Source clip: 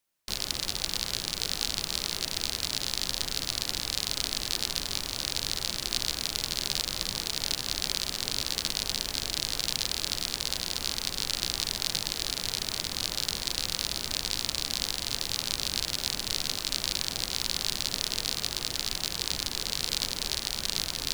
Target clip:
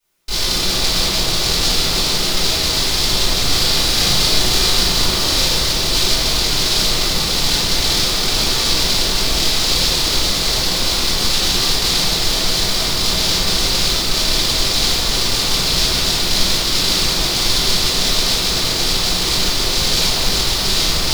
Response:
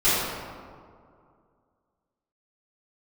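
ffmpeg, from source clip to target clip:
-filter_complex "[0:a]asettb=1/sr,asplit=3[s0][s1][s2];[s0]atrim=end=3.414[s3];[s1]atrim=start=3.41:end=5.44,asetpts=PTS-STARTPTS,afade=t=in:d=0.004:c=qsin,afade=t=out:st=2.026:d=0.004:c=qsin,asplit=2[s4][s5];[s5]adelay=38,volume=0.631[s6];[s4][s6]amix=inputs=2:normalize=0,atrim=end_sample=89523[s7];[s2]atrim=start=5.436[s8];[s3][s7]acrossfade=d=0.004:c1=hsin:c2=qsin[s9];[s9][s8]acrossfade=d=0.004:c1=qsin:c2=hsin[s10];[1:a]atrim=start_sample=2205[s11];[s10][s11]afir=irnorm=-1:irlink=0,volume=0.841"

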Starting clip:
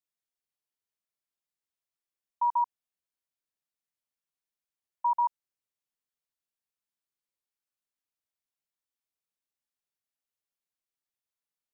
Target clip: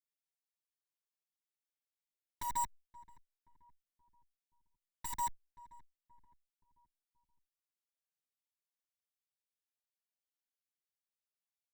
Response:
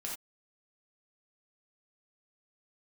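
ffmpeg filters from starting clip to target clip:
-filter_complex "[0:a]highpass=660,equalizer=f=1100:w=1.3:g=-4,aeval=exprs='0.0531*(cos(1*acos(clip(val(0)/0.0531,-1,1)))-cos(1*PI/2))+0.00119*(cos(3*acos(clip(val(0)/0.0531,-1,1)))-cos(3*PI/2))+0.0188*(cos(8*acos(clip(val(0)/0.0531,-1,1)))-cos(8*PI/2))':c=same,acrusher=bits=2:mode=log:mix=0:aa=0.000001,asplit=2[s0][s1];[s1]adelay=526,lowpass=f=990:p=1,volume=0.126,asplit=2[s2][s3];[s3]adelay=526,lowpass=f=990:p=1,volume=0.5,asplit=2[s4][s5];[s5]adelay=526,lowpass=f=990:p=1,volume=0.5,asplit=2[s6][s7];[s7]adelay=526,lowpass=f=990:p=1,volume=0.5[s8];[s2][s4][s6][s8]amix=inputs=4:normalize=0[s9];[s0][s9]amix=inputs=2:normalize=0,asplit=2[s10][s11];[s11]adelay=7.1,afreqshift=-2.6[s12];[s10][s12]amix=inputs=2:normalize=1,volume=0.631"

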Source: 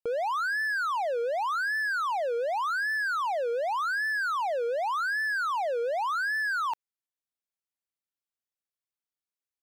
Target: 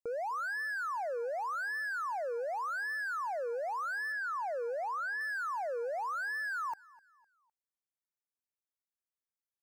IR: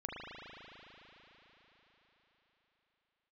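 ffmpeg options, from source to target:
-filter_complex "[0:a]asettb=1/sr,asplit=3[s0][s1][s2];[s0]atrim=end=4.124[s3];[s1]atrim=start=4.12:end=5.21,asetpts=PTS-STARTPTS,afade=t=in:d=0.004:c=qsin,afade=t=out:st=1.086:d=0.004:c=qsin,acrossover=split=4800[s4][s5];[s5]acompressor=threshold=0.00141:ratio=4:attack=1:release=60[s6];[s4][s6]amix=inputs=2:normalize=0[s7];[s2]atrim=start=5.206[s8];[s3][s7]acrossfade=d=0.004:c1=hsin:c2=qsin[s9];[s9][s8]acrossfade=d=0.004:c1=qsin:c2=hsin,asuperstop=centerf=3300:order=4:qfactor=1.2,aecho=1:1:254|508|762:0.0708|0.0276|0.0108,volume=0.447"

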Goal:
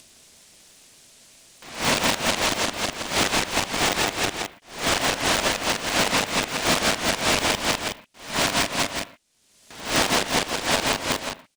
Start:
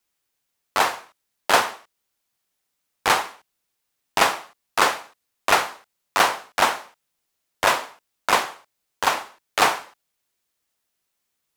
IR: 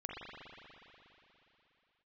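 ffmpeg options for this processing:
-filter_complex "[0:a]areverse,aecho=1:1:134|162|364|532:0.355|0.596|0.501|0.237,asplit=2[s0][s1];[1:a]atrim=start_sample=2205,atrim=end_sample=6174[s2];[s1][s2]afir=irnorm=-1:irlink=0,volume=0.335[s3];[s0][s3]amix=inputs=2:normalize=0,acompressor=mode=upward:threshold=0.02:ratio=2.5,equalizer=f=1100:t=o:w=1.3:g=-14.5,alimiter=limit=0.158:level=0:latency=1:release=81,lowpass=f=9600:w=0.5412,lowpass=f=9600:w=1.3066,equalizer=f=450:t=o:w=0.4:g=5.5,aeval=exprs='val(0)*sgn(sin(2*PI*200*n/s))':c=same,volume=1.88"

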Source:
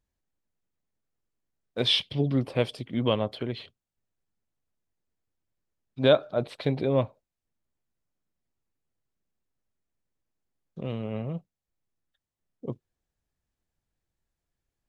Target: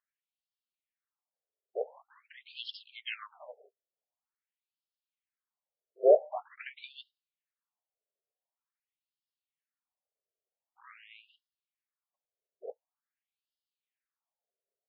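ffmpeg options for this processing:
-filter_complex "[0:a]asplit=4[s0][s1][s2][s3];[s1]asetrate=29433,aresample=44100,atempo=1.49831,volume=0.398[s4];[s2]asetrate=35002,aresample=44100,atempo=1.25992,volume=0.316[s5];[s3]asetrate=55563,aresample=44100,atempo=0.793701,volume=0.282[s6];[s0][s4][s5][s6]amix=inputs=4:normalize=0,afftfilt=real='re*between(b*sr/1024,490*pow(3900/490,0.5+0.5*sin(2*PI*0.46*pts/sr))/1.41,490*pow(3900/490,0.5+0.5*sin(2*PI*0.46*pts/sr))*1.41)':imag='im*between(b*sr/1024,490*pow(3900/490,0.5+0.5*sin(2*PI*0.46*pts/sr))/1.41,490*pow(3900/490,0.5+0.5*sin(2*PI*0.46*pts/sr))*1.41)':win_size=1024:overlap=0.75,volume=0.841"

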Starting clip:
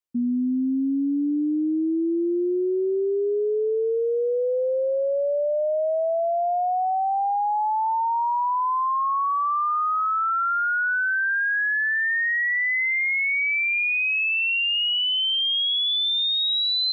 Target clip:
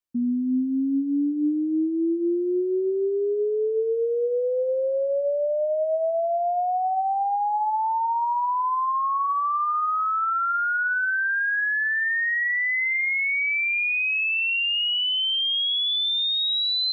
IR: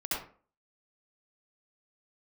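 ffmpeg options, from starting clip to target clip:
-filter_complex "[0:a]asplit=2[s0][s1];[s1]aemphasis=mode=reproduction:type=riaa[s2];[1:a]atrim=start_sample=2205[s3];[s2][s3]afir=irnorm=-1:irlink=0,volume=0.0631[s4];[s0][s4]amix=inputs=2:normalize=0,volume=0.891"

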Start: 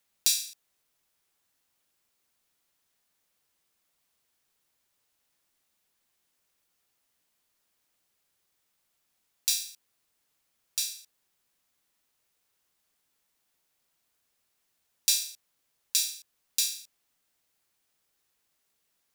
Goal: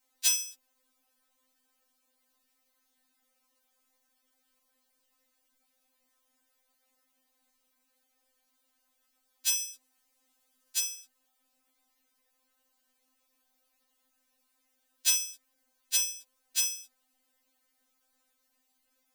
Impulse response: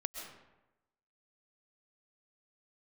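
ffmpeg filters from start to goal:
-filter_complex "[0:a]asettb=1/sr,asplit=3[s0][s1][s2];[s0]atrim=end=9.584[s3];[s1]atrim=start=9.58:end=10.79,asetpts=PTS-STARTPTS,afade=t=in:d=0.004:c=qsin,afade=t=out:st=1.206:d=0.004:c=qsin,equalizer=f=9100:t=o:w=1.9:g=3[s4];[s2]atrim=start=10.786[s5];[s3][s4]acrossfade=d=0.004:c1=hsin:c2=qsin[s6];[s6][s5]acrossfade=d=0.004:c1=qsin:c2=hsin,asplit=2[s7][s8];[s8]adynamicsmooth=sensitivity=1:basefreq=2000,volume=0.794[s9];[s7][s9]amix=inputs=2:normalize=0,afftfilt=real='re*3.46*eq(mod(b,12),0)':imag='im*3.46*eq(mod(b,12),0)':win_size=2048:overlap=0.75,volume=1.41"

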